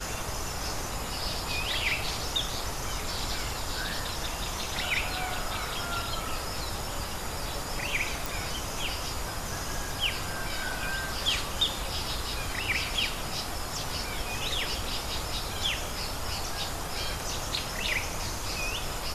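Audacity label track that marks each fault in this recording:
8.260000	8.260000	pop

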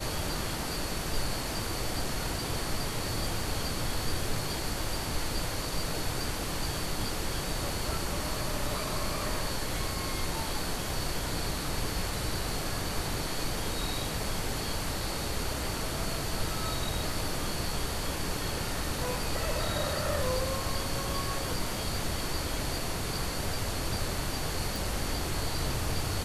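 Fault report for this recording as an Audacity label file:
24.760000	24.760000	pop

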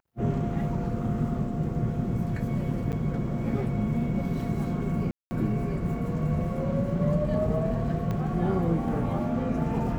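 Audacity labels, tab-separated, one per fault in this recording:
2.920000	2.930000	gap 7.9 ms
5.110000	5.310000	gap 0.2 s
8.110000	8.110000	pop -20 dBFS

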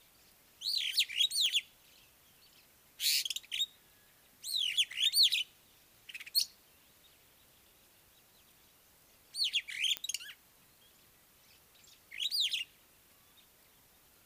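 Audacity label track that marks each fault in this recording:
1.460000	1.460000	pop -21 dBFS
4.920000	4.930000	gap 6.1 ms
9.970000	9.970000	pop -17 dBFS

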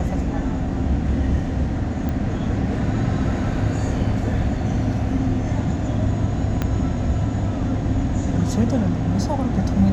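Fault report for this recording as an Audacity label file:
2.090000	2.090000	pop -15 dBFS
6.620000	6.620000	pop -9 dBFS

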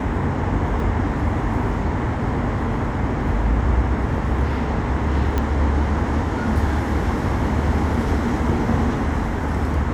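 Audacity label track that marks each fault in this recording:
0.800000	0.800000	gap 2 ms
5.380000	5.380000	pop -9 dBFS

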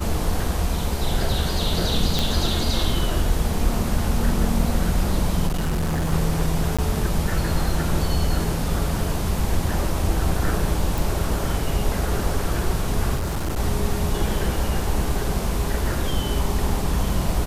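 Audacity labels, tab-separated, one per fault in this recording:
2.190000	2.190000	pop
5.470000	6.130000	clipped -19.5 dBFS
6.770000	6.790000	gap 16 ms
10.980000	10.980000	pop
13.150000	13.580000	clipped -21 dBFS

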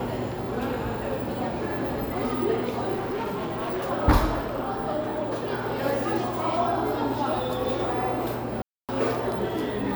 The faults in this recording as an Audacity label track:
2.950000	3.900000	clipped -26 dBFS
8.620000	8.890000	gap 0.267 s

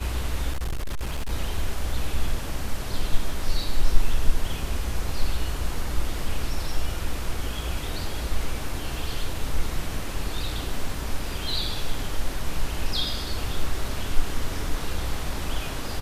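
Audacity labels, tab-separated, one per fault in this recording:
0.520000	1.300000	clipped -23.5 dBFS

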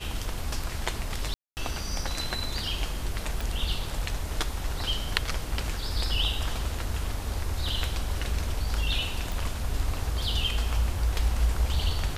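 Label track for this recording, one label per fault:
1.340000	1.570000	gap 0.229 s
3.410000	3.410000	pop
9.320000	9.320000	pop

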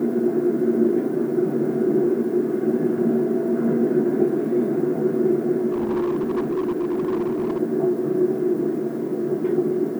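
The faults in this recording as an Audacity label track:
5.720000	7.610000	clipped -19.5 dBFS

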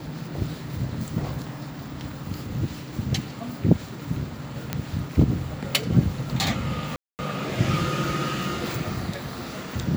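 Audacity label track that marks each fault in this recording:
4.730000	4.730000	pop -10 dBFS
6.960000	7.190000	gap 0.229 s

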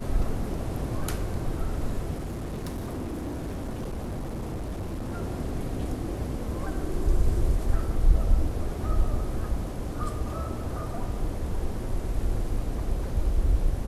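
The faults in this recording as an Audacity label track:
2.180000	5.120000	clipped -29 dBFS

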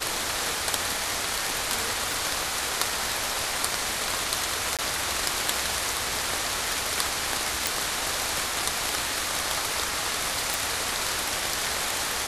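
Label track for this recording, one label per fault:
2.120000	2.120000	pop
4.770000	4.790000	gap 17 ms
7.670000	7.670000	pop
10.540000	10.540000	pop

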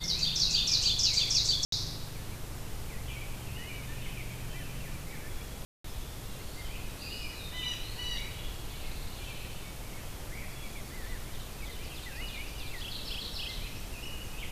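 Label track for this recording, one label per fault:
1.650000	1.720000	gap 73 ms
5.650000	5.840000	gap 0.194 s

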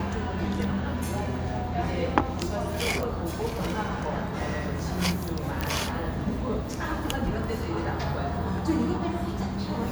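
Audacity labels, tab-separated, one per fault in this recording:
3.030000	3.030000	pop -18 dBFS
5.610000	5.610000	pop -13 dBFS

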